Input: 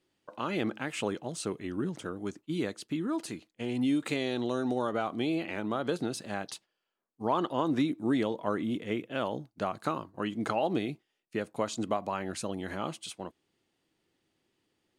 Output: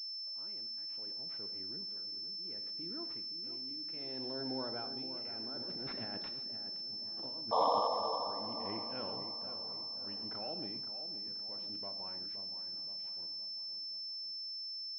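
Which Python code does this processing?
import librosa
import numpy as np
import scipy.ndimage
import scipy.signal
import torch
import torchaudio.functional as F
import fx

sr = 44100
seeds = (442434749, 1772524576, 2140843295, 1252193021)

p1 = fx.doppler_pass(x, sr, speed_mps=15, closest_m=7.0, pass_at_s=6.63)
p2 = fx.over_compress(p1, sr, threshold_db=-42.0, ratio=-0.5)
p3 = fx.notch(p2, sr, hz=1200.0, q=7.8)
p4 = fx.rev_gated(p3, sr, seeds[0], gate_ms=170, shape='flat', drr_db=8.5)
p5 = fx.spec_paint(p4, sr, seeds[1], shape='noise', start_s=7.51, length_s=0.77, low_hz=440.0, high_hz=1200.0, level_db=-27.0)
p6 = fx.transient(p5, sr, attack_db=-5, sustain_db=-1)
p7 = p6 * (1.0 - 0.78 / 2.0 + 0.78 / 2.0 * np.cos(2.0 * np.pi * 0.67 * (np.arange(len(p6)) / sr)))
p8 = p7 + fx.echo_filtered(p7, sr, ms=521, feedback_pct=55, hz=1900.0, wet_db=-9.5, dry=0)
y = fx.pwm(p8, sr, carrier_hz=5300.0)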